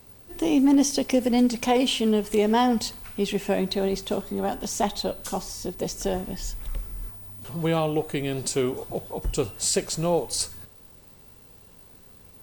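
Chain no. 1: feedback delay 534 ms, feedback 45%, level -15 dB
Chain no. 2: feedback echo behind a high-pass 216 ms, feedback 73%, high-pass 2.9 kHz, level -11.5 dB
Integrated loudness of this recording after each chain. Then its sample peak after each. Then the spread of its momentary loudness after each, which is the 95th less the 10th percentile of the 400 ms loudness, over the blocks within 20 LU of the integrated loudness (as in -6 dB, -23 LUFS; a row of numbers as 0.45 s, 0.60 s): -25.0 LUFS, -25.5 LUFS; -10.0 dBFS, -10.5 dBFS; 16 LU, 17 LU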